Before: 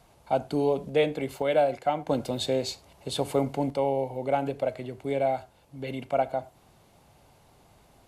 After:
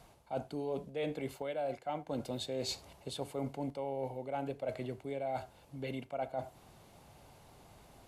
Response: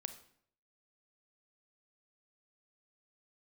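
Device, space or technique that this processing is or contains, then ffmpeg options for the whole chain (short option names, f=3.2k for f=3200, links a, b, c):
compression on the reversed sound: -af "areverse,acompressor=threshold=-35dB:ratio=6,areverse"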